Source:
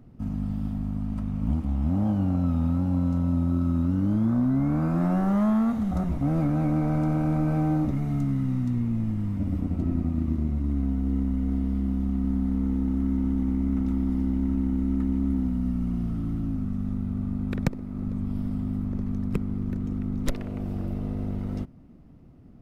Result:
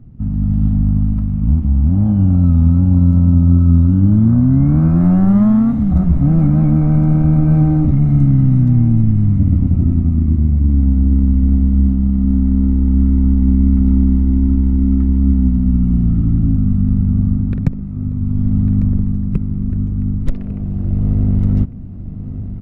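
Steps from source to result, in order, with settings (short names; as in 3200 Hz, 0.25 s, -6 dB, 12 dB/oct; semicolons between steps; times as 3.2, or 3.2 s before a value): tone controls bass +15 dB, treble -8 dB; AGC; on a send: echo 1.15 s -12.5 dB; on the sum: gain -2 dB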